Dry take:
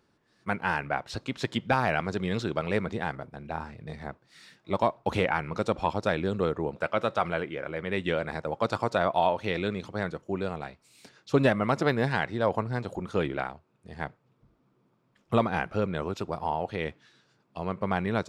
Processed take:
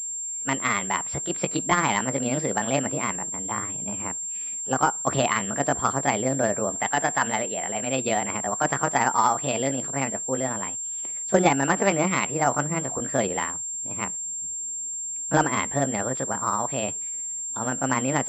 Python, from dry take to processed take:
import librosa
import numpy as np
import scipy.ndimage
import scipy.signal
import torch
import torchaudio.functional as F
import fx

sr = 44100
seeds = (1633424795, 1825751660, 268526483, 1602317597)

y = fx.pitch_heads(x, sr, semitones=5.0)
y = fx.pwm(y, sr, carrier_hz=7400.0)
y = F.gain(torch.from_numpy(y), 4.5).numpy()